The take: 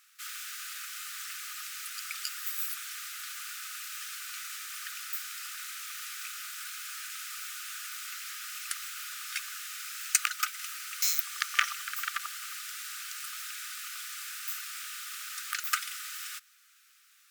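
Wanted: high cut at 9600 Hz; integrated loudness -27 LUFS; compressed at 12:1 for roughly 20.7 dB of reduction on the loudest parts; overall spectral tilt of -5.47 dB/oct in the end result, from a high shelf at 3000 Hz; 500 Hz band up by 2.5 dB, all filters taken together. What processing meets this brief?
LPF 9600 Hz; bell 500 Hz +3.5 dB; high shelf 3000 Hz -7.5 dB; compressor 12:1, threshold -44 dBFS; gain +19.5 dB

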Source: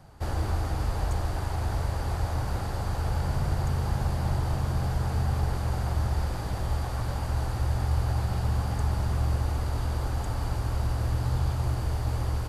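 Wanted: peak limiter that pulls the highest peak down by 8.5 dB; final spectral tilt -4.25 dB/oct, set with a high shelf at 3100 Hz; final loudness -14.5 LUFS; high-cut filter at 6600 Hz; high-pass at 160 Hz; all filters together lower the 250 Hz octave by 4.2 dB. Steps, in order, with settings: HPF 160 Hz; LPF 6600 Hz; bell 250 Hz -4 dB; high shelf 3100 Hz +9 dB; gain +24.5 dB; limiter -5.5 dBFS

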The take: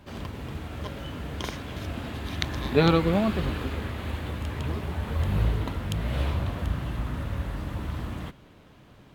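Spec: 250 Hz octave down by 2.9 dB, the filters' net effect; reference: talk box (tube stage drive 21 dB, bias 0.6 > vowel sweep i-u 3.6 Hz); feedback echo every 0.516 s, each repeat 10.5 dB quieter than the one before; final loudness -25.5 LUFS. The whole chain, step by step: bell 250 Hz -4.5 dB; feedback echo 0.516 s, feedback 30%, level -10.5 dB; tube stage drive 21 dB, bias 0.6; vowel sweep i-u 3.6 Hz; gain +23.5 dB

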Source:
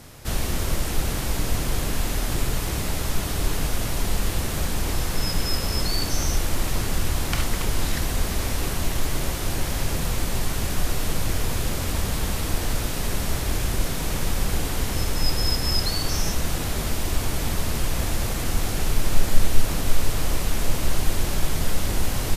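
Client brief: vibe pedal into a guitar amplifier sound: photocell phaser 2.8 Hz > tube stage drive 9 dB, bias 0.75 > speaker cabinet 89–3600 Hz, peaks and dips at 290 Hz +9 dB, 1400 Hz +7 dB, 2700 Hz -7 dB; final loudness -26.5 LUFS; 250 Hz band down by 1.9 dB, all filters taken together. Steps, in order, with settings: bell 250 Hz -8 dB; photocell phaser 2.8 Hz; tube stage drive 9 dB, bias 0.75; speaker cabinet 89–3600 Hz, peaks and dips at 290 Hz +9 dB, 1400 Hz +7 dB, 2700 Hz -7 dB; gain +12.5 dB

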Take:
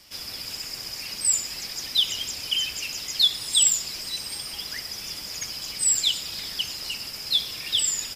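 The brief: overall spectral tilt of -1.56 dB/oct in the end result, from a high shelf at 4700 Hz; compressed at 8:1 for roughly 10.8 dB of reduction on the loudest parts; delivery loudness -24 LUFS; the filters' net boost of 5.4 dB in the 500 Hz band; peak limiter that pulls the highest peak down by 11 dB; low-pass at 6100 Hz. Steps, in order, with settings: LPF 6100 Hz; bell 500 Hz +6.5 dB; high shelf 4700 Hz +8 dB; compressor 8:1, threshold -25 dBFS; gain +8 dB; limiter -18 dBFS

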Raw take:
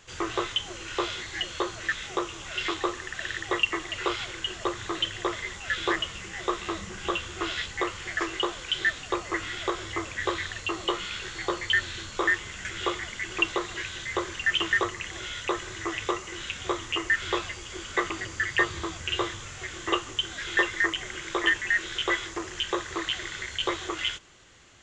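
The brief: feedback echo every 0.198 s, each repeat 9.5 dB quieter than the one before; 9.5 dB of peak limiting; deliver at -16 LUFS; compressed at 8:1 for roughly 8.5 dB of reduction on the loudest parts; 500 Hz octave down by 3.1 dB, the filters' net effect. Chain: bell 500 Hz -4.5 dB; compressor 8:1, threshold -30 dBFS; limiter -25 dBFS; feedback echo 0.198 s, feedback 33%, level -9.5 dB; gain +20 dB

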